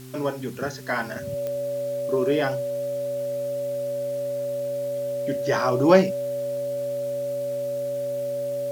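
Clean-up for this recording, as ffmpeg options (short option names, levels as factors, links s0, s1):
-af "adeclick=t=4,bandreject=f=128.8:t=h:w=4,bandreject=f=257.6:t=h:w=4,bandreject=f=386.4:t=h:w=4,bandreject=f=570:w=30,afwtdn=0.0035"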